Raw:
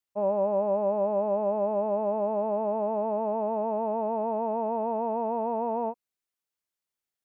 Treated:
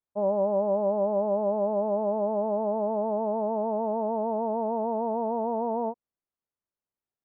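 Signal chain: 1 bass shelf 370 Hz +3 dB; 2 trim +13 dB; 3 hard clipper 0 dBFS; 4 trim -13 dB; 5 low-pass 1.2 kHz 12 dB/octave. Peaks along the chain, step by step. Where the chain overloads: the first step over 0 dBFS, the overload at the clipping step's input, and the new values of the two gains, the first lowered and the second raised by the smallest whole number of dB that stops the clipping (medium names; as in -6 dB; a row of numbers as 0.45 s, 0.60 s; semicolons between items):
-16.0 dBFS, -3.0 dBFS, -3.0 dBFS, -16.0 dBFS, -16.5 dBFS; nothing clips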